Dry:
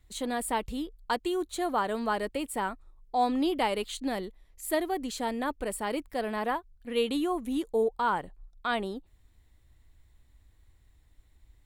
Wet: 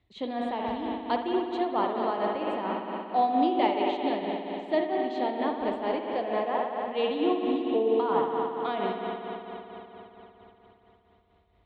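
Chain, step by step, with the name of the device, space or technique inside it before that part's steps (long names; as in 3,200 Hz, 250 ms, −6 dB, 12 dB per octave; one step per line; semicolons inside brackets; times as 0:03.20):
combo amplifier with spring reverb and tremolo (spring reverb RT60 4 s, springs 58 ms, chirp 30 ms, DRR −1.5 dB; amplitude tremolo 4.4 Hz, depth 53%; loudspeaker in its box 100–3,800 Hz, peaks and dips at 360 Hz +3 dB, 680 Hz +5 dB, 1,500 Hz −9 dB)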